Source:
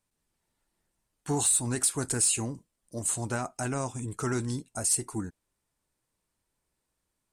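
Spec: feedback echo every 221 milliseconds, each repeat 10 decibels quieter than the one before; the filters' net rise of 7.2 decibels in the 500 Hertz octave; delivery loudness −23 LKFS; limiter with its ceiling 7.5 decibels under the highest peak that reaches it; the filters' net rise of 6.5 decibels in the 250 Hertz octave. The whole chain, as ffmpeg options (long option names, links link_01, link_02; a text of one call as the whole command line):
ffmpeg -i in.wav -af "equalizer=frequency=250:width_type=o:gain=5.5,equalizer=frequency=500:width_type=o:gain=7.5,alimiter=limit=-21dB:level=0:latency=1,aecho=1:1:221|442|663|884:0.316|0.101|0.0324|0.0104,volume=7dB" out.wav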